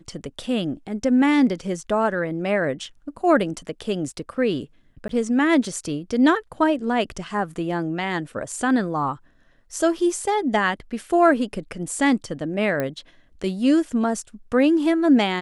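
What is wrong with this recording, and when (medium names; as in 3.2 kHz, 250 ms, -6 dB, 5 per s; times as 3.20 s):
5.08–5.09 s: dropout 13 ms
12.80 s: pop -12 dBFS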